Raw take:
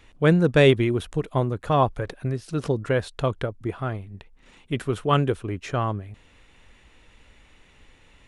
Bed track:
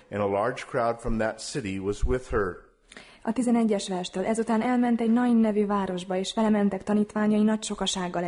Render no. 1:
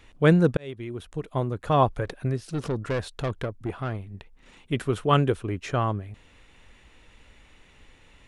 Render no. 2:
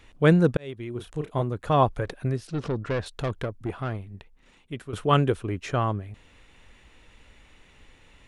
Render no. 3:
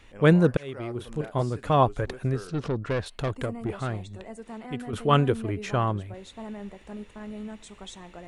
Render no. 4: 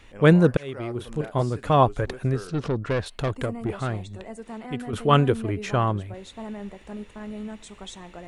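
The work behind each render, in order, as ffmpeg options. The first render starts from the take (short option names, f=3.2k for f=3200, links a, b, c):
-filter_complex "[0:a]asettb=1/sr,asplit=3[a][b][c];[a]atrim=end=2.474[d];[b]atrim=start=2.47:end=4.06,asetpts=PTS-STARTPTS,afade=t=in:d=0.004:c=qsin,afade=t=out:st=1.586:d=0.004:c=qsin,aeval=exprs='(tanh(12.6*val(0)+0.25)-tanh(0.25))/12.6':c=same[e];[c]atrim=start=4.056[f];[d][e]acrossfade=d=0.004:c1=hsin:c2=qsin[g];[g][f]acrossfade=d=0.004:c1=qsin:c2=hsin,asplit=2[h][i];[h]atrim=end=0.57,asetpts=PTS-STARTPTS,afade=t=out:st=0.566:d=0.004:c=hsin[j];[i]atrim=start=0.57,asetpts=PTS-STARTPTS,afade=t=in:d=1.28[k];[j][k]concat=n=2:v=0:a=1"
-filter_complex "[0:a]asettb=1/sr,asplit=3[a][b][c];[a]atrim=end=0.924[d];[b]atrim=start=0.92:end=1.42,asetpts=PTS-STARTPTS,afade=t=in:d=0.004:c=qsin,afade=t=out:st=0.496:d=0.004:c=qsin,asplit=2[e][f];[f]adelay=33,volume=-6dB[g];[e][g]amix=inputs=2:normalize=0,atrim=end_sample=22050[h];[c]atrim=start=1.416[i];[d][h]acrossfade=d=0.004:c1=hsin:c2=qsin[j];[j][i]acrossfade=d=0.004:c1=qsin:c2=hsin,asettb=1/sr,asplit=3[k][l][m];[k]atrim=end=2.474[n];[l]atrim=start=2.47:end=3.06,asetpts=PTS-STARTPTS,afade=t=in:d=0.004:c=qsin,afade=t=out:st=0.586:d=0.004:c=qsin,lowpass=5.1k[o];[m]atrim=start=3.056[p];[n][o]acrossfade=d=0.004:c1=hsin:c2=qsin[q];[q][p]acrossfade=d=0.004:c1=qsin:c2=hsin,asplit=2[r][s];[r]atrim=end=4.93,asetpts=PTS-STARTPTS,afade=t=out:st=3.92:d=1.01:silence=0.237137[t];[s]atrim=start=4.93,asetpts=PTS-STARTPTS,afade=t=in:d=0.004:c=hsin:silence=0.237137[u];[t][u]concat=n=2:v=0:a=1"
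-filter_complex "[1:a]volume=-15.5dB[a];[0:a][a]amix=inputs=2:normalize=0"
-af "volume=2.5dB"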